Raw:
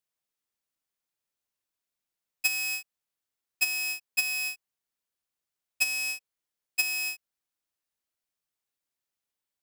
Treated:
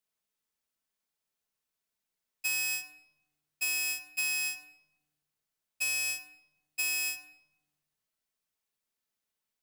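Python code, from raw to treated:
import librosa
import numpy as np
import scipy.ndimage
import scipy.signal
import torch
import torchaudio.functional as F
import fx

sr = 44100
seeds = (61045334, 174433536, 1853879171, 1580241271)

y = fx.transient(x, sr, attack_db=-8, sustain_db=2)
y = fx.room_shoebox(y, sr, seeds[0], volume_m3=3700.0, walls='furnished', distance_m=1.5)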